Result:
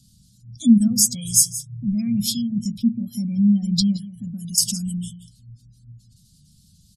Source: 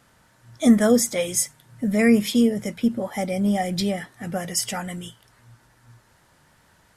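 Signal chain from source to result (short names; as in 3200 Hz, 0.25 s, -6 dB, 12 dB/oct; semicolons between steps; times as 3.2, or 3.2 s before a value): 0.87–2.52 graphic EQ 125/250/1000 Hz +9/-11/+11 dB; echo 0.174 s -15 dB; dynamic EQ 140 Hz, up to -6 dB, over -40 dBFS, Q 2.4; spectral gate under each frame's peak -25 dB strong; elliptic band-stop 200–4200 Hz, stop band 40 dB; 3.96–4.58 compressor, threshold -37 dBFS, peak gain reduction 13 dB; gain +8.5 dB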